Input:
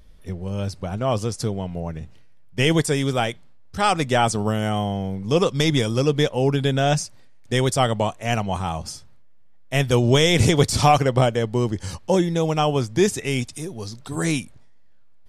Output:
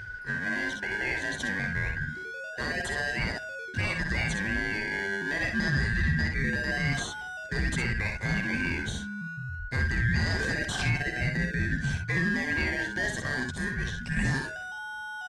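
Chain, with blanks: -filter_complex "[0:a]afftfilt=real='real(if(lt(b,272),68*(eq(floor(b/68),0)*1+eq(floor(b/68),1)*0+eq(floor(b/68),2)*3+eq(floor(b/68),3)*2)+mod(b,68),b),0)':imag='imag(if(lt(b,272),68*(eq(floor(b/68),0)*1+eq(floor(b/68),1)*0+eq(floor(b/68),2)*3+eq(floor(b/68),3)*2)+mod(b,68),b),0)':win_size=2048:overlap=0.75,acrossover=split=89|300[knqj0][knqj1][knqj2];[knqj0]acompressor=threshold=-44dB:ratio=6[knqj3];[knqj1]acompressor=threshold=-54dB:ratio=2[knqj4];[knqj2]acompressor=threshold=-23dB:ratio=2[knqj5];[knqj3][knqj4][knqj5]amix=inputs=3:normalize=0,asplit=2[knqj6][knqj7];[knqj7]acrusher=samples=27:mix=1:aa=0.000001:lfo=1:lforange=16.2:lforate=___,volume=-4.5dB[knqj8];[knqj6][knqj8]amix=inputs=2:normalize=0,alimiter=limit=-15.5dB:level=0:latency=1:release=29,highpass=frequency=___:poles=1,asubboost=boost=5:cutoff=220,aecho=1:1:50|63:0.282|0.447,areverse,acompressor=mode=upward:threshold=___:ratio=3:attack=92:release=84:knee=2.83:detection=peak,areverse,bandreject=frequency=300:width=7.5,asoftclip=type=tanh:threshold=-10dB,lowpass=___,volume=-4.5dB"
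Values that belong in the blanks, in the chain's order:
0.25, 59, -32dB, 6700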